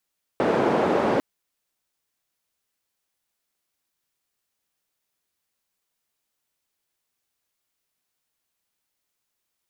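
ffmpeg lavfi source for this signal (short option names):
-f lavfi -i "anoisesrc=c=white:d=0.8:r=44100:seed=1,highpass=f=230,lowpass=f=590,volume=0.6dB"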